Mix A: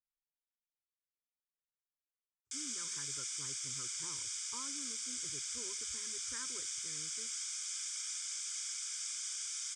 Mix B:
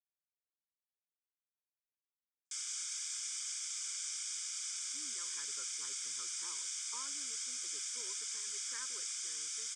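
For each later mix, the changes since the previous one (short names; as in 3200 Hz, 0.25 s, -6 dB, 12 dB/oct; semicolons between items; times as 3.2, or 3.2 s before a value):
speech: entry +2.40 s; master: add HPF 510 Hz 12 dB/oct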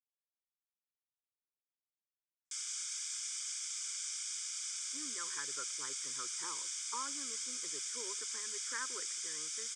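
speech +9.0 dB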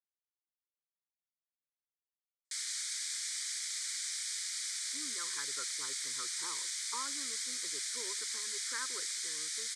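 background: remove fixed phaser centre 2800 Hz, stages 8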